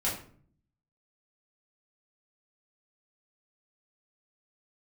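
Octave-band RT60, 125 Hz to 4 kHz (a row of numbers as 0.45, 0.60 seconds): 0.95, 0.85, 0.55, 0.45, 0.40, 0.35 seconds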